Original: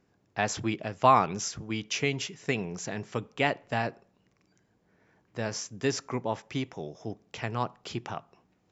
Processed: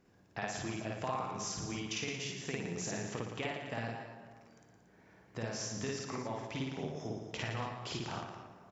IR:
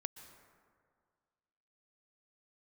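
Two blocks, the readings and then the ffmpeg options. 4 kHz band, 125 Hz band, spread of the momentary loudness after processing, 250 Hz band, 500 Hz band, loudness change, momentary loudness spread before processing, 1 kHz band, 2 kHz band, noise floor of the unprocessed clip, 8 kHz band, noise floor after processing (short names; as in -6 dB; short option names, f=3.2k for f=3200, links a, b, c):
-5.5 dB, -5.5 dB, 9 LU, -6.5 dB, -9.0 dB, -9.0 dB, 14 LU, -13.0 dB, -8.0 dB, -70 dBFS, n/a, -64 dBFS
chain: -filter_complex "[0:a]acompressor=threshold=-39dB:ratio=6,aecho=1:1:113.7|230.3:0.447|0.282,asplit=2[a][b];[1:a]atrim=start_sample=2205,adelay=53[c];[b][c]afir=irnorm=-1:irlink=0,volume=3dB[d];[a][d]amix=inputs=2:normalize=0"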